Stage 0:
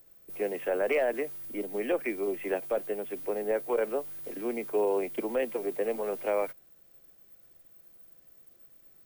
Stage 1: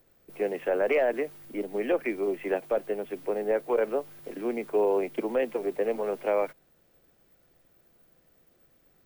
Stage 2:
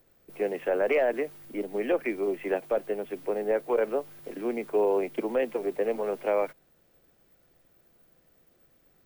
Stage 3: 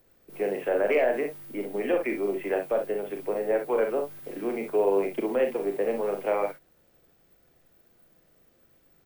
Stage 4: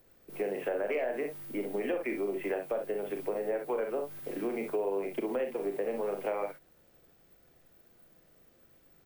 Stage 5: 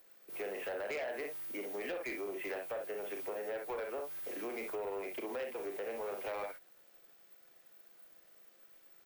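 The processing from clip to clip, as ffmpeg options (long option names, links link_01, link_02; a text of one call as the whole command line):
ffmpeg -i in.wav -af "aemphasis=mode=reproduction:type=cd,volume=2.5dB" out.wav
ffmpeg -i in.wav -af anull out.wav
ffmpeg -i in.wav -af "aecho=1:1:40|61:0.473|0.376" out.wav
ffmpeg -i in.wav -af "acompressor=threshold=-30dB:ratio=4" out.wav
ffmpeg -i in.wav -af "highpass=frequency=1000:poles=1,asoftclip=type=tanh:threshold=-36.5dB,volume=2.5dB" out.wav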